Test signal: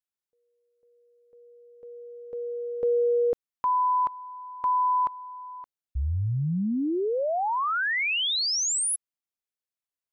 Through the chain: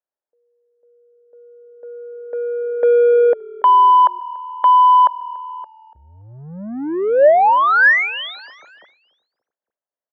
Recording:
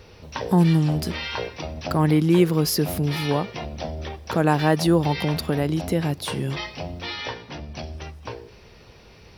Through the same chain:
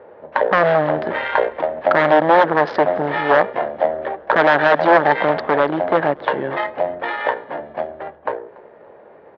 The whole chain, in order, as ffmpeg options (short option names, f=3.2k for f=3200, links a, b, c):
-filter_complex "[0:a]adynamicsmooth=sensitivity=2:basefreq=790,aresample=16000,aeval=exprs='0.141*(abs(mod(val(0)/0.141+3,4)-2)-1)':c=same,aresample=44100,highpass=480,equalizer=f=590:t=q:w=4:g=8,equalizer=f=870:t=q:w=4:g=3,equalizer=f=1.7k:t=q:w=4:g=7,equalizer=f=2.6k:t=q:w=4:g=-8,lowpass=f=3.2k:w=0.5412,lowpass=f=3.2k:w=1.3066,asplit=2[a][b];[b]asplit=3[c][d][e];[c]adelay=286,afreqshift=-39,volume=-23dB[f];[d]adelay=572,afreqshift=-78,volume=-29.4dB[g];[e]adelay=858,afreqshift=-117,volume=-35.8dB[h];[f][g][h]amix=inputs=3:normalize=0[i];[a][i]amix=inputs=2:normalize=0,aeval=exprs='0.299*(cos(1*acos(clip(val(0)/0.299,-1,1)))-cos(1*PI/2))+0.0266*(cos(3*acos(clip(val(0)/0.299,-1,1)))-cos(3*PI/2))':c=same,alimiter=level_in=15.5dB:limit=-1dB:release=50:level=0:latency=1,volume=-1dB"